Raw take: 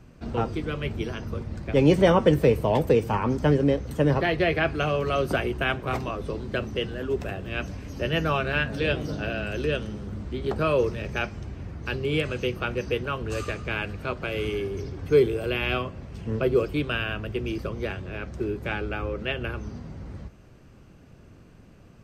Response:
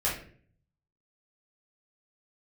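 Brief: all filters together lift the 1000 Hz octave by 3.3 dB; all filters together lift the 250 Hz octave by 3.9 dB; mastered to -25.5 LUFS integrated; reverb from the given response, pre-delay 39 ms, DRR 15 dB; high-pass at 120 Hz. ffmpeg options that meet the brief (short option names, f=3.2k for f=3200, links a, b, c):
-filter_complex "[0:a]highpass=120,equalizer=f=250:t=o:g=5.5,equalizer=f=1k:t=o:g=4,asplit=2[a][b];[1:a]atrim=start_sample=2205,adelay=39[c];[b][c]afir=irnorm=-1:irlink=0,volume=-24dB[d];[a][d]amix=inputs=2:normalize=0,volume=-1.5dB"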